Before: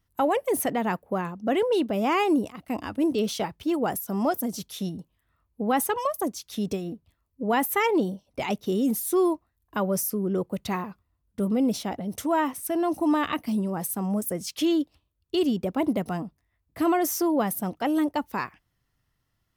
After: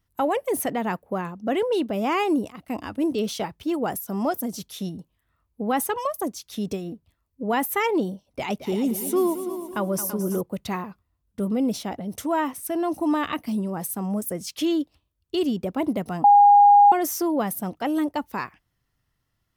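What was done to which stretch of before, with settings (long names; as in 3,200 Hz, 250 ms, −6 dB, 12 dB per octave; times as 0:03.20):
0:08.26–0:10.41: echo machine with several playback heads 111 ms, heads second and third, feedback 43%, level −12 dB
0:16.24–0:16.92: beep over 816 Hz −9.5 dBFS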